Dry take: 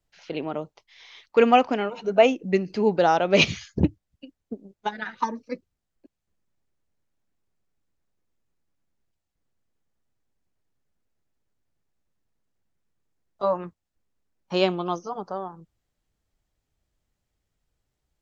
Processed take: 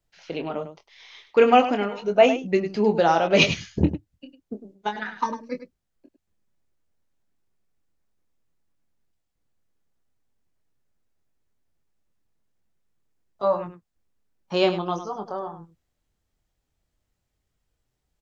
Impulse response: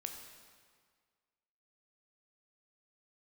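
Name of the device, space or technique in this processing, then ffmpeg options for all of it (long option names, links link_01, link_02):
slapback doubling: -filter_complex "[0:a]asplit=3[link_01][link_02][link_03];[link_02]adelay=24,volume=-7.5dB[link_04];[link_03]adelay=102,volume=-11dB[link_05];[link_01][link_04][link_05]amix=inputs=3:normalize=0"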